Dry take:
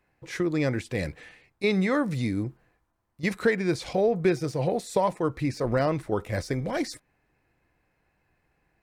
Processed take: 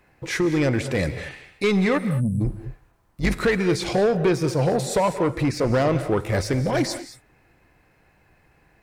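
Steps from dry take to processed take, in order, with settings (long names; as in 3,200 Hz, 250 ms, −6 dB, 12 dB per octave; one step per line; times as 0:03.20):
0:02.44–0:03.37: sub-octave generator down 2 octaves, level 0 dB
in parallel at −1 dB: downward compressor, threshold −37 dBFS, peak gain reduction 18.5 dB
0:01.98–0:02.41: on the sum: time-frequency box erased 250–7,800 Hz
soft clipping −20.5 dBFS, distortion −13 dB
reverb whose tail is shaped and stops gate 240 ms rising, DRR 11 dB
level +6 dB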